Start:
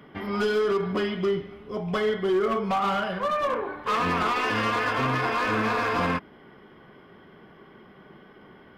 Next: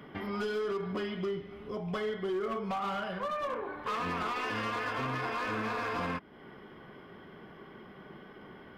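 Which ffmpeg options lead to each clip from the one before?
-af "acompressor=threshold=0.0112:ratio=2"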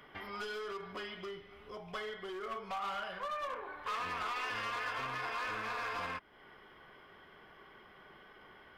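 -af "equalizer=f=200:w=0.49:g=-15,volume=0.891"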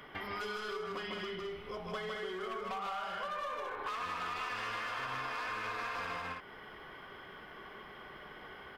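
-filter_complex "[0:a]asplit=2[s0][s1];[s1]aecho=0:1:154.5|212.8:0.708|0.447[s2];[s0][s2]amix=inputs=2:normalize=0,acompressor=threshold=0.00794:ratio=4,volume=1.78"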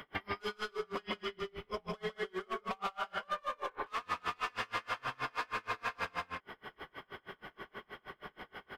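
-af "aeval=exprs='val(0)*pow(10,-33*(0.5-0.5*cos(2*PI*6.3*n/s))/20)':c=same,volume=2.11"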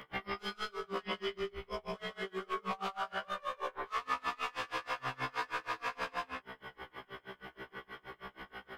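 -af "afftfilt=real='re*1.73*eq(mod(b,3),0)':imag='im*1.73*eq(mod(b,3),0)':win_size=2048:overlap=0.75,volume=1.41"

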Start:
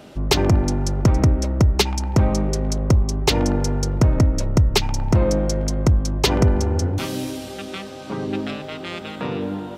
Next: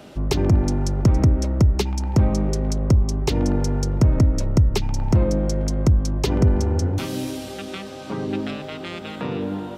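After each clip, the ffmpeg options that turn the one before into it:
-filter_complex "[0:a]acrossover=split=420[s0][s1];[s1]acompressor=threshold=0.0282:ratio=2.5[s2];[s0][s2]amix=inputs=2:normalize=0"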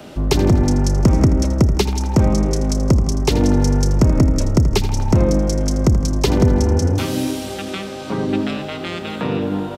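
-filter_complex "[0:a]acrossover=split=170|1200|4800[s0][s1][s2][s3];[s0]asoftclip=type=tanh:threshold=0.133[s4];[s3]asplit=2[s5][s6];[s6]adelay=31,volume=0.422[s7];[s5][s7]amix=inputs=2:normalize=0[s8];[s4][s1][s2][s8]amix=inputs=4:normalize=0,aecho=1:1:81|162|243|324|405:0.224|0.119|0.0629|0.0333|0.0177,volume=1.88"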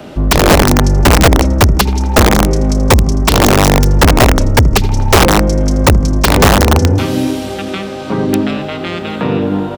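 -filter_complex "[0:a]asplit=2[s0][s1];[s1]adynamicsmooth=sensitivity=0.5:basefreq=4800,volume=0.794[s2];[s0][s2]amix=inputs=2:normalize=0,aeval=exprs='(mod(1.41*val(0)+1,2)-1)/1.41':c=same,volume=1.19"

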